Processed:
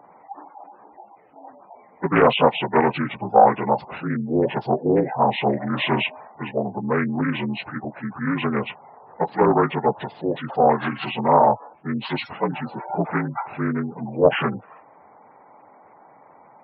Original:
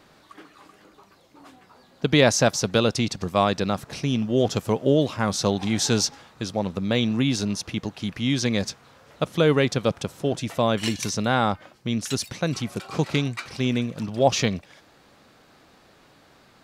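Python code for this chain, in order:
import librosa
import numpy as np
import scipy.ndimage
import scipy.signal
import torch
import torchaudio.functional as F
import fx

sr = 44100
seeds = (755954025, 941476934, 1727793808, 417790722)

y = fx.partial_stretch(x, sr, pct=76)
y = fx.peak_eq(y, sr, hz=810.0, db=15.0, octaves=1.0)
y = fx.spec_gate(y, sr, threshold_db=-20, keep='strong')
y = fx.doppler_dist(y, sr, depth_ms=0.31)
y = F.gain(torch.from_numpy(y), -1.0).numpy()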